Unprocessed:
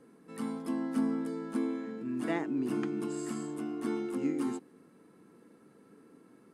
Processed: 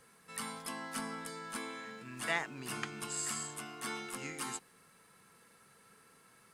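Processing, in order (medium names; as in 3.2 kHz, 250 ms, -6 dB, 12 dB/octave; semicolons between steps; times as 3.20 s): amplifier tone stack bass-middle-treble 10-0-10; trim +11.5 dB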